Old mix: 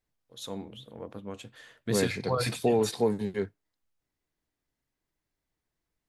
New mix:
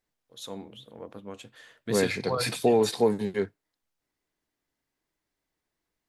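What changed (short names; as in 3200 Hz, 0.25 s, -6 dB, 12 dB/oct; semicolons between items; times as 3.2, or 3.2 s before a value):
second voice +4.0 dB; master: add low shelf 130 Hz -8.5 dB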